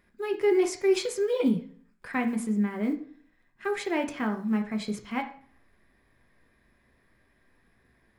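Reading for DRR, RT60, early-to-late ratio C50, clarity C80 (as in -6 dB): 3.5 dB, 0.50 s, 11.5 dB, 15.0 dB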